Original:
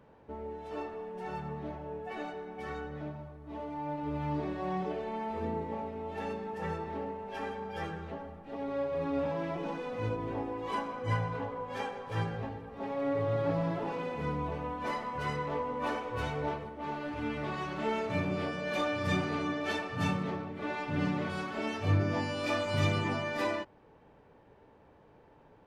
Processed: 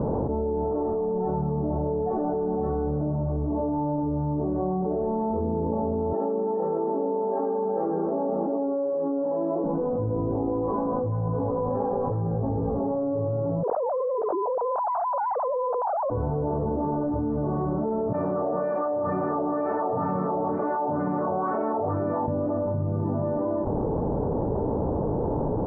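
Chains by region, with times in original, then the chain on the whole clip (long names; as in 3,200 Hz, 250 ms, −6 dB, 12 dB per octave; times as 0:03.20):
0:06.13–0:09.64: high-pass filter 250 Hz 24 dB per octave + double-tracking delay 36 ms −12 dB
0:13.63–0:16.10: three sine waves on the formant tracks + envelope flattener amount 100%
0:18.13–0:22.28: LFO wah 2.1 Hz 710–3,000 Hz, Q 2.1 + saturating transformer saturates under 1,300 Hz
whole clip: Bessel low-pass filter 580 Hz, order 8; envelope flattener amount 100%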